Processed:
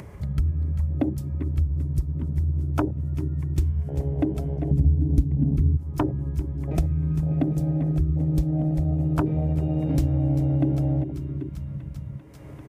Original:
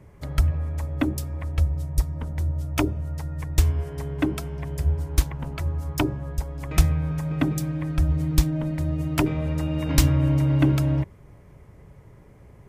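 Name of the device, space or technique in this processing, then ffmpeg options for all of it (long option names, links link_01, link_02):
upward and downward compression: -filter_complex "[0:a]aecho=1:1:393|786|1179|1572|1965|2358:0.224|0.128|0.0727|0.0415|0.0236|0.0135,asettb=1/sr,asplit=3[link_01][link_02][link_03];[link_01]atrim=end=4.714[link_04];[link_02]atrim=start=4.71:end=5.77,asetpts=PTS-STARTPTS,afade=type=in:duration=0.004:curve=qsin,afade=type=out:start_time=1.056:duration=0.004:curve=qsin,lowshelf=frequency=370:width_type=q:width=3:gain=12[link_05];[link_03]atrim=start=5.766[link_06];[link_04][link_05]acrossfade=duration=0.004:curve1=hsin:curve2=qsin[link_07];[link_07][link_06]acrossfade=duration=0.004:curve1=qsin:curve2=hsin,afwtdn=0.0501,highpass=56,acompressor=mode=upward:threshold=-29dB:ratio=2.5,acompressor=threshold=-25dB:ratio=3,volume=4.5dB"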